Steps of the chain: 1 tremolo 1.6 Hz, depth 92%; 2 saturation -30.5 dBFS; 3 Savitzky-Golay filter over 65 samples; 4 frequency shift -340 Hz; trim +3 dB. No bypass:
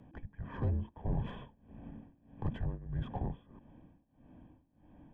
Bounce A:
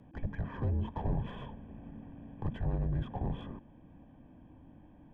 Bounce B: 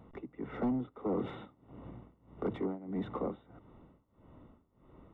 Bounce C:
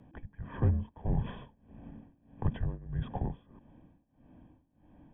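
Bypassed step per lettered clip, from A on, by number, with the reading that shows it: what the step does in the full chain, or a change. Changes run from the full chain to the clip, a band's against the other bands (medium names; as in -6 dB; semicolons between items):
1, crest factor change -2.5 dB; 4, 125 Hz band -14.0 dB; 2, distortion -11 dB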